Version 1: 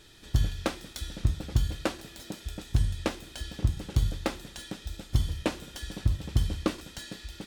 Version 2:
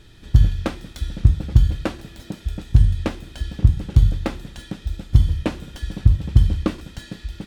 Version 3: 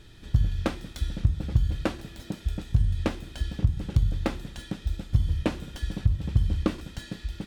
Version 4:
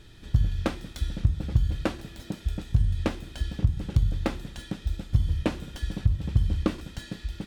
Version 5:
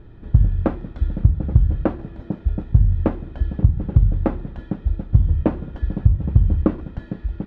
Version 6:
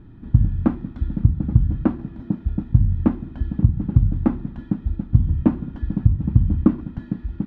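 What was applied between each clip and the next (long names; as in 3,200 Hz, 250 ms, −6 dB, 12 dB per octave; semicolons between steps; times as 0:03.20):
bass and treble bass +9 dB, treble −6 dB; level +3 dB
downward compressor 6 to 1, threshold −15 dBFS, peak gain reduction 9 dB; level −2.5 dB
no processing that can be heard
low-pass filter 1,000 Hz 12 dB per octave; level +8 dB
octave-band graphic EQ 125/250/500/1,000 Hz +4/+12/−9/+4 dB; level −4.5 dB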